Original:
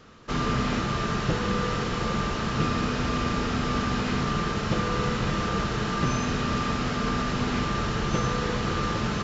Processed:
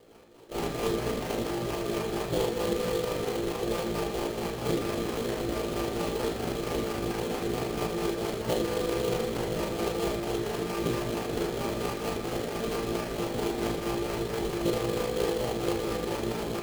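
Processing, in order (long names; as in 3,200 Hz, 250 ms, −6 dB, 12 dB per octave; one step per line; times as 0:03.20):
flat-topped bell 530 Hz +12 dB
rotating-speaker cabinet horn 8 Hz
time stretch by overlap-add 1.8×, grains 79 ms
sample-rate reduction 3,700 Hz, jitter 20%
on a send: convolution reverb RT60 0.50 s, pre-delay 31 ms, DRR 4 dB
on the sum: level −7 dB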